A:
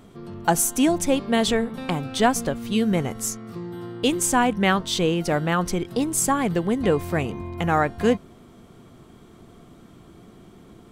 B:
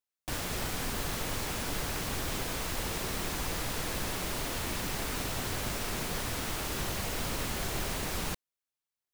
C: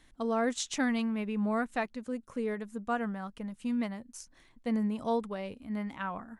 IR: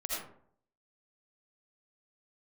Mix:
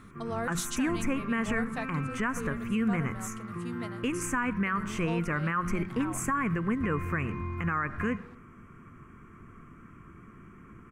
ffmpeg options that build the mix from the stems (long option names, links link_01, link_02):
-filter_complex "[0:a]firequalizer=gain_entry='entry(100,0);entry(750,-18);entry(1100,5);entry(2500,1);entry(3700,-29);entry(6300,-10)':delay=0.05:min_phase=1,volume=0dB,asplit=2[link_01][link_02];[link_02]volume=-23dB[link_03];[1:a]bandpass=frequency=1200:width_type=q:width=1.8:csg=0,volume=-17dB[link_04];[2:a]aemphasis=mode=production:type=bsi,volume=-3.5dB[link_05];[3:a]atrim=start_sample=2205[link_06];[link_03][link_06]afir=irnorm=-1:irlink=0[link_07];[link_01][link_04][link_05][link_07]amix=inputs=4:normalize=0,highshelf=frequency=6500:gain=-6.5,bandreject=frequency=60:width_type=h:width=6,bandreject=frequency=120:width_type=h:width=6,bandreject=frequency=180:width_type=h:width=6,alimiter=limit=-20dB:level=0:latency=1:release=110"